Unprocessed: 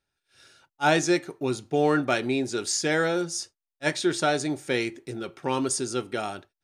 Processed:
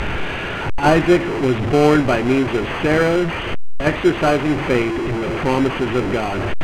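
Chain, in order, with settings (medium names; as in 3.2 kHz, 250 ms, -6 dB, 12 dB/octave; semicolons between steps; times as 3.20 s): one-bit delta coder 16 kbps, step -24.5 dBFS; bass shelf 69 Hz +7.5 dB; in parallel at -5 dB: sample-rate reducer 1.8 kHz, jitter 0%; on the sum: distance through air 59 m; trim +6 dB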